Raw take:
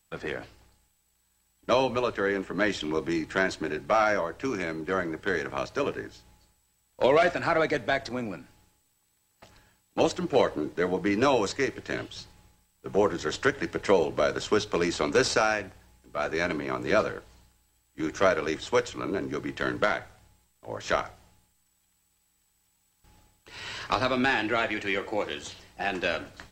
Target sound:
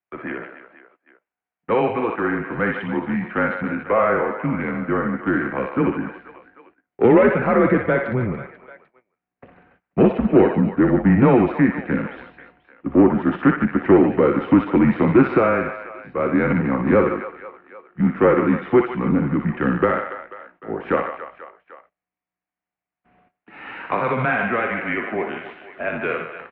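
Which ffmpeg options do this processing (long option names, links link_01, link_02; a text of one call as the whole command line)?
ffmpeg -i in.wav -filter_complex "[0:a]acrossover=split=460[link_01][link_02];[link_01]dynaudnorm=framelen=510:gausssize=21:maxgain=13.5dB[link_03];[link_02]aecho=1:1:60|150|285|487.5|791.2:0.631|0.398|0.251|0.158|0.1[link_04];[link_03][link_04]amix=inputs=2:normalize=0,acontrast=57,agate=range=-17dB:threshold=-49dB:ratio=16:detection=peak,highpass=frequency=270:width_type=q:width=0.5412,highpass=frequency=270:width_type=q:width=1.307,lowpass=frequency=2500:width_type=q:width=0.5176,lowpass=frequency=2500:width_type=q:width=0.7071,lowpass=frequency=2500:width_type=q:width=1.932,afreqshift=-120,volume=-2dB" out.wav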